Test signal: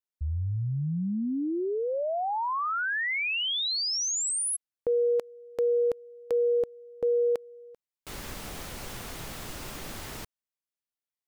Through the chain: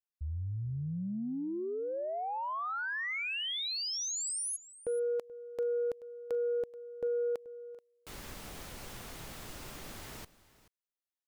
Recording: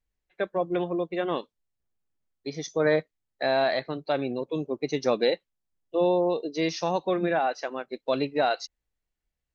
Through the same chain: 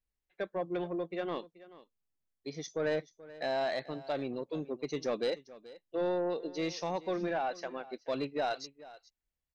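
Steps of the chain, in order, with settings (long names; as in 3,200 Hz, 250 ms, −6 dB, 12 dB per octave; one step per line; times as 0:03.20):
soft clipping −18 dBFS
on a send: single-tap delay 431 ms −18.5 dB
on the sum: level −6.5 dB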